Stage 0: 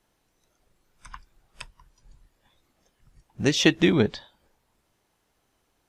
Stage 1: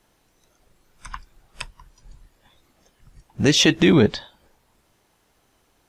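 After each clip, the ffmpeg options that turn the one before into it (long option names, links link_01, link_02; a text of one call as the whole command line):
ffmpeg -i in.wav -af "alimiter=limit=-11.5dB:level=0:latency=1:release=18,volume=7.5dB" out.wav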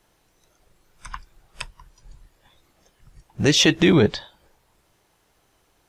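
ffmpeg -i in.wav -af "equalizer=frequency=240:width=6.3:gain=-8" out.wav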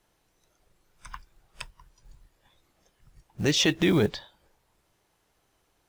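ffmpeg -i in.wav -af "acrusher=bits=7:mode=log:mix=0:aa=0.000001,volume=-6.5dB" out.wav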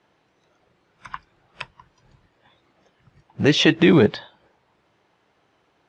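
ffmpeg -i in.wav -af "highpass=120,lowpass=3200,volume=8.5dB" out.wav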